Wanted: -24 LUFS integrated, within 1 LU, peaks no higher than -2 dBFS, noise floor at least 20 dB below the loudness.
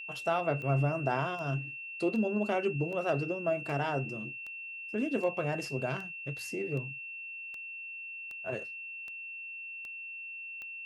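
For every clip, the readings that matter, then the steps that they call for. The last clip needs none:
clicks found 14; steady tone 2.7 kHz; tone level -40 dBFS; loudness -34.0 LUFS; peak level -16.0 dBFS; loudness target -24.0 LUFS
-> de-click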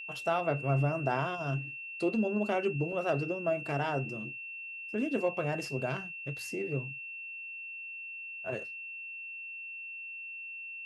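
clicks found 0; steady tone 2.7 kHz; tone level -40 dBFS
-> band-stop 2.7 kHz, Q 30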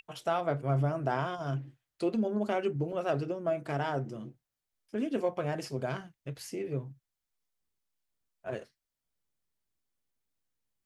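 steady tone not found; loudness -33.5 LUFS; peak level -16.5 dBFS; loudness target -24.0 LUFS
-> trim +9.5 dB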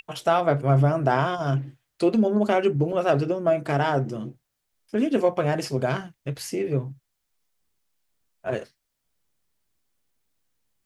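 loudness -24.0 LUFS; peak level -7.0 dBFS; noise floor -78 dBFS

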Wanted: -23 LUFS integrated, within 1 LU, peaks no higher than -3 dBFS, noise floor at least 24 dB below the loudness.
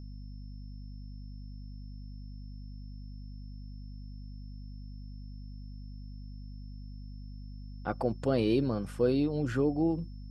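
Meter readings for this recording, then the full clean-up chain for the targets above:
hum 50 Hz; highest harmonic 250 Hz; hum level -41 dBFS; steady tone 5.3 kHz; tone level -65 dBFS; loudness -30.0 LUFS; peak level -16.0 dBFS; loudness target -23.0 LUFS
-> hum notches 50/100/150/200/250 Hz; band-stop 5.3 kHz, Q 30; trim +7 dB

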